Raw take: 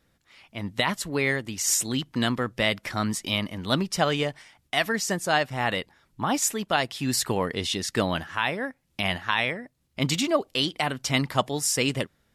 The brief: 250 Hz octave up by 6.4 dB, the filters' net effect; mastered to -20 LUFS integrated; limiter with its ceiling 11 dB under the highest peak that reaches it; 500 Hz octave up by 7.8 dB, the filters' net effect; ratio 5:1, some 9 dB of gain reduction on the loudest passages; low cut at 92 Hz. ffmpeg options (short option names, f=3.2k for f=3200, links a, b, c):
-af "highpass=92,equalizer=f=250:t=o:g=5.5,equalizer=f=500:t=o:g=8.5,acompressor=threshold=-22dB:ratio=5,volume=10dB,alimiter=limit=-8dB:level=0:latency=1"